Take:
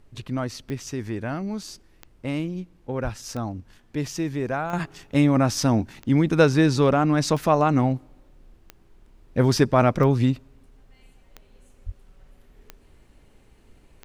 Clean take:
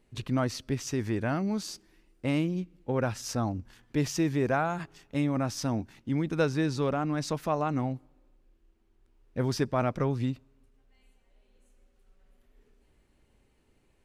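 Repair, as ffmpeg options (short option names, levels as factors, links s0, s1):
-filter_complex "[0:a]adeclick=t=4,asplit=3[s0][s1][s2];[s0]afade=t=out:st=3.03:d=0.02[s3];[s1]highpass=f=140:w=0.5412,highpass=f=140:w=1.3066,afade=t=in:st=3.03:d=0.02,afade=t=out:st=3.15:d=0.02[s4];[s2]afade=t=in:st=3.15:d=0.02[s5];[s3][s4][s5]amix=inputs=3:normalize=0,asplit=3[s6][s7][s8];[s6]afade=t=out:st=11.85:d=0.02[s9];[s7]highpass=f=140:w=0.5412,highpass=f=140:w=1.3066,afade=t=in:st=11.85:d=0.02,afade=t=out:st=11.97:d=0.02[s10];[s8]afade=t=in:st=11.97:d=0.02[s11];[s9][s10][s11]amix=inputs=3:normalize=0,agate=range=0.0891:threshold=0.00447,asetnsamples=n=441:p=0,asendcmd='4.73 volume volume -9.5dB',volume=1"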